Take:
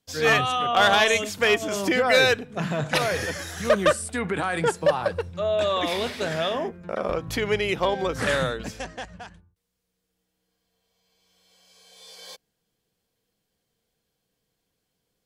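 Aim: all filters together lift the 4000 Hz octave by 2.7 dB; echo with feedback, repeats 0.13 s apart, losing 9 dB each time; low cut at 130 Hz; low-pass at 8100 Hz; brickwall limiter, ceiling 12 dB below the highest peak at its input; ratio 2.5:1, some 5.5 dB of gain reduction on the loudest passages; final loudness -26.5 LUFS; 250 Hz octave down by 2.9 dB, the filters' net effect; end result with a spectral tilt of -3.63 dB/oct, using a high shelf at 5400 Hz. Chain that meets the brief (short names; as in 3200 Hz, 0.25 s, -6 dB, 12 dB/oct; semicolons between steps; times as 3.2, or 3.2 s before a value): HPF 130 Hz; LPF 8100 Hz; bell 250 Hz -3.5 dB; bell 4000 Hz +6 dB; high shelf 5400 Hz -7 dB; compressor 2.5:1, threshold -22 dBFS; limiter -21.5 dBFS; feedback echo 0.13 s, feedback 35%, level -9 dB; gain +4 dB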